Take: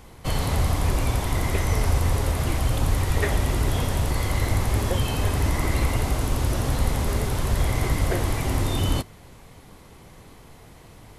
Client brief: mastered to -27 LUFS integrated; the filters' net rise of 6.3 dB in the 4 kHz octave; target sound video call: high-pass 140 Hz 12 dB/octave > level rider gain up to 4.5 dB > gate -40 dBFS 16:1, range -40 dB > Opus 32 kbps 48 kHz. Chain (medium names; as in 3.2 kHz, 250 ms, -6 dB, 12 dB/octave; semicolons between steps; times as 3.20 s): high-pass 140 Hz 12 dB/octave; peaking EQ 4 kHz +8 dB; level rider gain up to 4.5 dB; gate -40 dBFS 16:1, range -40 dB; Opus 32 kbps 48 kHz